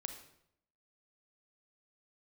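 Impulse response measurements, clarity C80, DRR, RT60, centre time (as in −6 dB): 11.0 dB, 6.0 dB, 0.75 s, 17 ms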